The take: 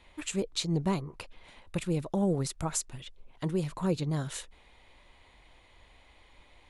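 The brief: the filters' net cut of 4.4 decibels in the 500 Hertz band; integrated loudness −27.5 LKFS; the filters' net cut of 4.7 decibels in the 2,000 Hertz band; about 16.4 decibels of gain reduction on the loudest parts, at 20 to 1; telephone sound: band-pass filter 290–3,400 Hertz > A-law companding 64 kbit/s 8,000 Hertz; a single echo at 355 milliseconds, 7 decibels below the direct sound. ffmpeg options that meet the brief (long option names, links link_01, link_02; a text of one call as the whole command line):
ffmpeg -i in.wav -af "equalizer=frequency=500:width_type=o:gain=-4.5,equalizer=frequency=2000:width_type=o:gain=-5,acompressor=threshold=-42dB:ratio=20,highpass=290,lowpass=3400,aecho=1:1:355:0.447,volume=27.5dB" -ar 8000 -c:a pcm_alaw out.wav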